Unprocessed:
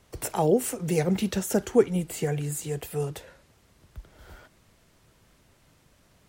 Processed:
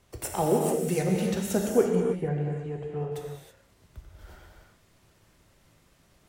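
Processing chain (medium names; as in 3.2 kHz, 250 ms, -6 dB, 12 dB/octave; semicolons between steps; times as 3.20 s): 1.95–3.12 s: low-pass 1.6 kHz 12 dB/octave; transient shaper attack +1 dB, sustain -4 dB; gated-style reverb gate 350 ms flat, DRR 0 dB; trim -3.5 dB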